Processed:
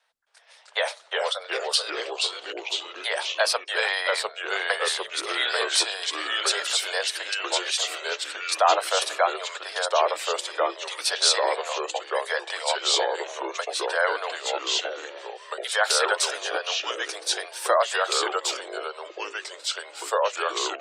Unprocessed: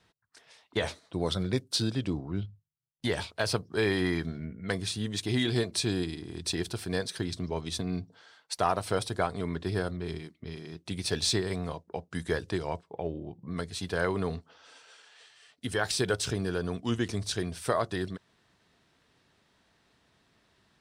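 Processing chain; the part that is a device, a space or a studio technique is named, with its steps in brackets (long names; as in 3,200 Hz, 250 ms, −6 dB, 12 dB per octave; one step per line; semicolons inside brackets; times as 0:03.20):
Butterworth high-pass 510 Hz 72 dB per octave
delay with pitch and tempo change per echo 266 ms, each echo −2 semitones, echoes 3
noise-suppressed video call (high-pass filter 110 Hz 6 dB per octave; gate on every frequency bin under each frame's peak −30 dB strong; automatic gain control gain up to 8.5 dB; Opus 32 kbit/s 48,000 Hz)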